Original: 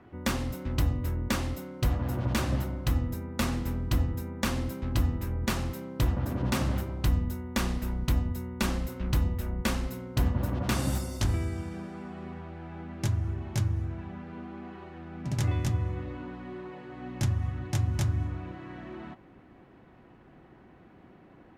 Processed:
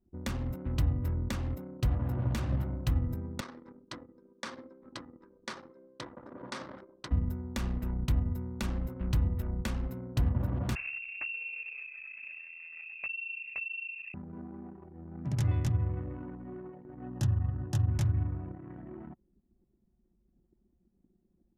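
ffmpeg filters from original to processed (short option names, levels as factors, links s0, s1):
-filter_complex "[0:a]asettb=1/sr,asplit=3[s0][s1][s2];[s0]atrim=end=3.404[s3];[s1]atrim=start=3.4:end=7.11,asetpts=PTS-STARTPTS,afade=t=in:d=0.004:c=qsin,afade=t=out:st=3.706:d=0.004:c=qsin,highpass=470,equalizer=f=730:t=q:w=4:g=-7,equalizer=f=2700:t=q:w=4:g=-8,equalizer=f=7100:t=q:w=4:g=-7,lowpass=f=8200:w=0.5412,lowpass=f=8200:w=1.3066[s4];[s2]atrim=start=7.106[s5];[s3][s4]acrossfade=d=0.004:c1=hsin:c2=qsin[s6];[s6][s5]acrossfade=d=0.004:c1=qsin:c2=hsin,asettb=1/sr,asplit=3[s7][s8][s9];[s7]atrim=end=10.754[s10];[s8]atrim=start=10.75:end=14.14,asetpts=PTS-STARTPTS,afade=t=in:d=0.004:c=qsin,afade=t=out:st=3.386:d=0.004:c=qsin,lowpass=f=2400:t=q:w=0.5098,lowpass=f=2400:t=q:w=0.6013,lowpass=f=2400:t=q:w=0.9,lowpass=f=2400:t=q:w=2.563,afreqshift=-2800[s11];[s9]atrim=start=14.136[s12];[s10][s11]acrossfade=d=0.004:c1=hsin:c2=qsin[s13];[s13][s12]acrossfade=d=0.004:c1=qsin:c2=hsin,asettb=1/sr,asplit=3[s14][s15][s16];[s14]atrim=end=17.044[s17];[s15]atrim=start=17.04:end=17.89,asetpts=PTS-STARTPTS,afade=t=in:d=0.004:c=qsin,afade=t=out:st=0.846:d=0.004:c=qsin,asuperstop=centerf=2200:order=4:qfactor=4.4[s18];[s16]atrim=start=17.886[s19];[s17][s18]acrossfade=d=0.004:c1=hsin:c2=qsin[s20];[s20][s19]acrossfade=d=0.004:c1=qsin:c2=hsin,acrossover=split=140[s21][s22];[s22]acompressor=threshold=0.0224:ratio=4[s23];[s21][s23]amix=inputs=2:normalize=0,equalizer=f=120:t=o:w=1.5:g=3.5,anlmdn=0.631,volume=0.708"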